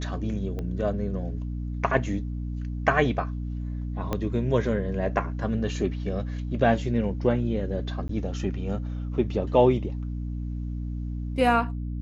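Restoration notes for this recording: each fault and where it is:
hum 60 Hz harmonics 5 -31 dBFS
0.59 pop -22 dBFS
4.13 pop -14 dBFS
8.08–8.09 gap 13 ms

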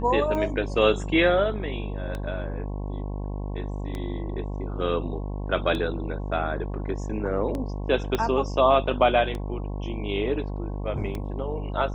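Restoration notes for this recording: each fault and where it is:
buzz 50 Hz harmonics 22 -31 dBFS
tick 33 1/3 rpm -19 dBFS
8.15 pop -12 dBFS

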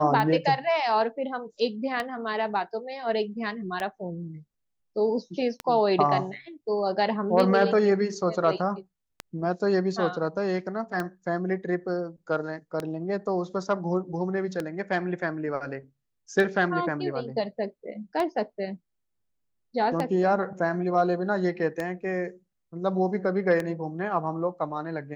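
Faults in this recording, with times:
tick 33 1/3 rpm -15 dBFS

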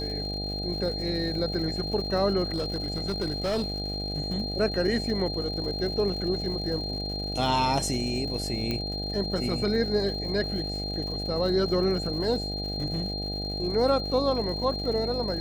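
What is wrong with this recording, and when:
buzz 50 Hz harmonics 16 -34 dBFS
crackle 180/s -38 dBFS
tone 4200 Hz -33 dBFS
2.54–4.12 clipped -23.5 dBFS
8.71 pop -16 dBFS

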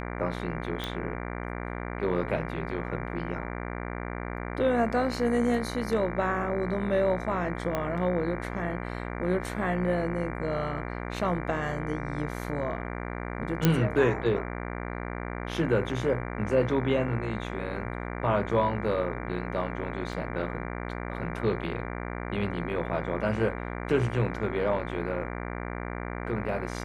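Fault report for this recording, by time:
buzz 60 Hz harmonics 39 -35 dBFS
0.84 pop
7.75 pop -16 dBFS
13.65 pop -7 dBFS
20.13 gap 2.3 ms

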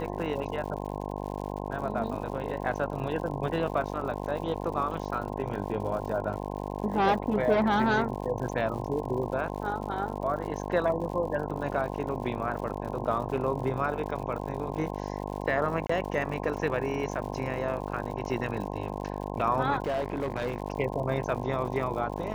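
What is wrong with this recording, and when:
buzz 50 Hz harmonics 21 -35 dBFS
crackle 110/s -38 dBFS
15.87–15.89 gap 24 ms
19.86–20.6 clipped -25 dBFS

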